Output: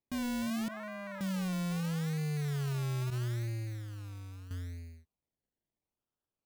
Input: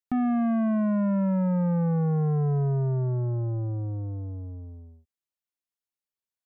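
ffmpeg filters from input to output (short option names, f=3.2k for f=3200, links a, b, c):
-filter_complex "[0:a]acrusher=samples=28:mix=1:aa=0.000001:lfo=1:lforange=16.8:lforate=0.77,asettb=1/sr,asplit=3[a][b][c];[a]atrim=end=0.684[d];[b]atrim=start=0.68:end=1.21,asetpts=PTS-STARTPTS,afade=t=in:d=0.004:c=qsin,afade=t=out:st=0.526:d=0.004:c=qsin,acrossover=split=490 2000:gain=0.0891 1 0.0708[e][f][g];[e][f][g]amix=inputs=3:normalize=0[h];[c]atrim=start=1.206[i];[d][h]acrossfade=d=0.004:c1=hsin:c2=qsin[j];[j][i]acrossfade=d=0.004:c1=qsin:c2=hsin,acompressor=threshold=-29dB:ratio=6,asettb=1/sr,asplit=3[k][l][m];[k]atrim=end=3.104[n];[l]atrim=start=3.1:end=4.51,asetpts=PTS-STARTPTS,afade=t=in:d=0.004:c=qsin,afade=t=out:st=1.406:d=0.004:c=qsin,agate=range=-11dB:threshold=-31dB:ratio=16:detection=peak[o];[m]atrim=start=4.506[p];[n][o]acrossfade=d=0.004:c1=hsin:c2=qsin[q];[q][p]acrossfade=d=0.004:c1=qsin:c2=hsin,alimiter=level_in=8dB:limit=-24dB:level=0:latency=1,volume=-8dB,equalizer=f=790:w=0.6:g=-4"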